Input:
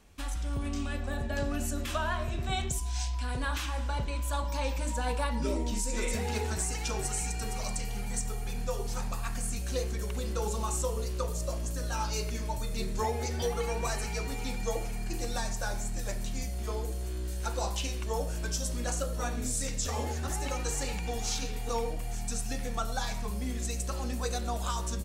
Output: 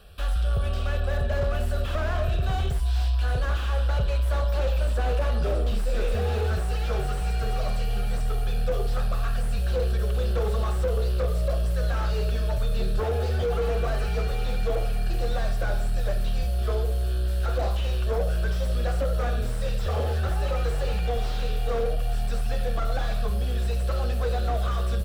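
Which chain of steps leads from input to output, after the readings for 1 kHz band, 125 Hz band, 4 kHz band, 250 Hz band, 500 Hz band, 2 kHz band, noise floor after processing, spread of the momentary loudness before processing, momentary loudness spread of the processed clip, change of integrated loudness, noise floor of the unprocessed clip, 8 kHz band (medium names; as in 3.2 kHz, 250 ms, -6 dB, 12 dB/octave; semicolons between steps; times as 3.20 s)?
+2.0 dB, +9.0 dB, +1.0 dB, 0.0 dB, +7.0 dB, +2.5 dB, -26 dBFS, 4 LU, 3 LU, +6.5 dB, -34 dBFS, -11.0 dB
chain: Chebyshev shaper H 5 -12 dB, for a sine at -17.5 dBFS; static phaser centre 1.4 kHz, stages 8; slew-rate limiter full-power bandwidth 21 Hz; trim +4.5 dB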